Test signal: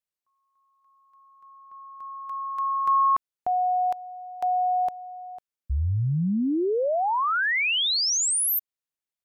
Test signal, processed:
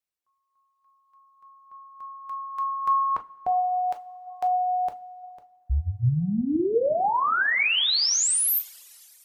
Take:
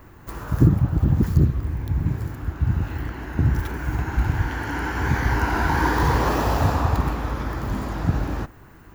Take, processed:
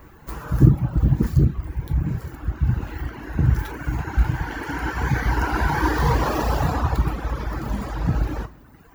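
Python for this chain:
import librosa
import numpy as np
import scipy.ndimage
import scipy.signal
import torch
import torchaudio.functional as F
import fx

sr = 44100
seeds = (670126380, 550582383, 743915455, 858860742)

y = fx.rev_double_slope(x, sr, seeds[0], early_s=0.52, late_s=2.6, knee_db=-13, drr_db=3.0)
y = fx.dereverb_blind(y, sr, rt60_s=1.1)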